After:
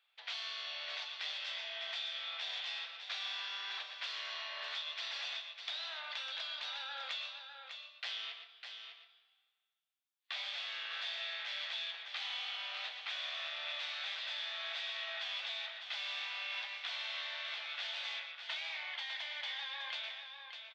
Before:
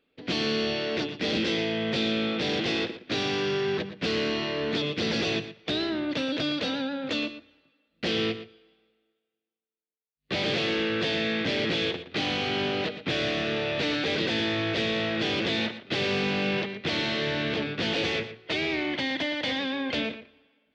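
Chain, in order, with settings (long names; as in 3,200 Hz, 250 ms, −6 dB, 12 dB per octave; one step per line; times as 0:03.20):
Butterworth high-pass 790 Hz 36 dB per octave
parametric band 3,500 Hz +5.5 dB 0.29 octaves
downward compressor, threshold −39 dBFS, peak gain reduction 14 dB
flanger 1.6 Hz, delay 6.6 ms, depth 7.8 ms, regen −70%
on a send: single-tap delay 602 ms −7.5 dB
on the sum: rectangular room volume 240 cubic metres, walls furnished, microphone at 0.78 metres
level +2.5 dB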